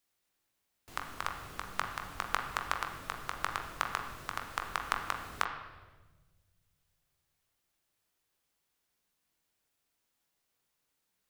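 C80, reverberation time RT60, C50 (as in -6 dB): 8.5 dB, 1.3 s, 6.5 dB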